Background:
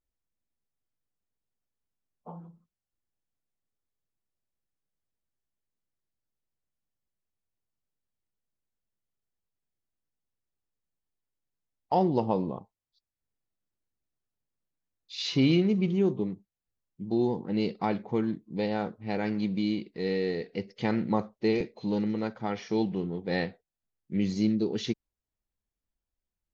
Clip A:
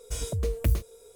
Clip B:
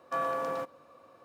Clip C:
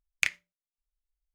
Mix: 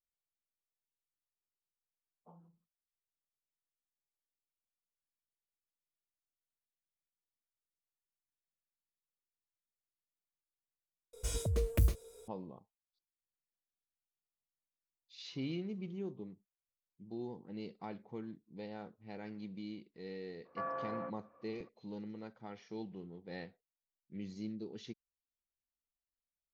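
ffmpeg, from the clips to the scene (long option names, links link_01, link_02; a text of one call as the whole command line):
ffmpeg -i bed.wav -i cue0.wav -i cue1.wav -filter_complex "[0:a]volume=-16.5dB[link_01];[2:a]lowpass=frequency=2100:width=0.5412,lowpass=frequency=2100:width=1.3066[link_02];[link_01]asplit=2[link_03][link_04];[link_03]atrim=end=11.134[link_05];[1:a]atrim=end=1.15,asetpts=PTS-STARTPTS,volume=-4.5dB[link_06];[link_04]atrim=start=12.276[link_07];[link_02]atrim=end=1.24,asetpts=PTS-STARTPTS,volume=-8.5dB,afade=type=in:duration=0.004:curve=hsin,afade=type=out:start_time=1.236:duration=0.004:curve=hsin,adelay=20450[link_08];[link_05][link_06]acrossfade=duration=0.004:curve1=hsin:curve2=hsin[link_09];[link_09][link_07]acrossfade=duration=0.004:curve1=hsin:curve2=hsin[link_10];[link_10][link_08]amix=inputs=2:normalize=0" out.wav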